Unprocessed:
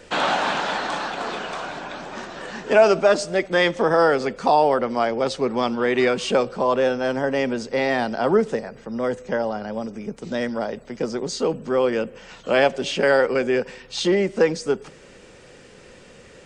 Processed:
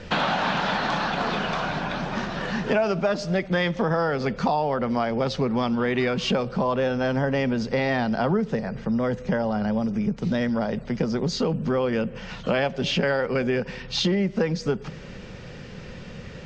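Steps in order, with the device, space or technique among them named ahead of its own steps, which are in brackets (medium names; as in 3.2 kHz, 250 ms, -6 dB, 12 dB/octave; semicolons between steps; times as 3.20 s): jukebox (low-pass 6.6 kHz 12 dB/octave; resonant low shelf 240 Hz +8 dB, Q 1.5; compression 4:1, threshold -26 dBFS, peak gain reduction 13.5 dB); low-pass 6.3 kHz 24 dB/octave; trim +4.5 dB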